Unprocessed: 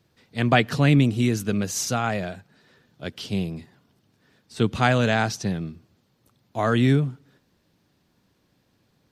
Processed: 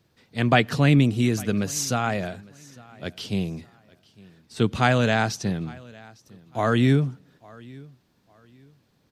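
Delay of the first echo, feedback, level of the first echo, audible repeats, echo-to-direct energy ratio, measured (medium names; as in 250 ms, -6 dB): 855 ms, 29%, -23.5 dB, 2, -23.0 dB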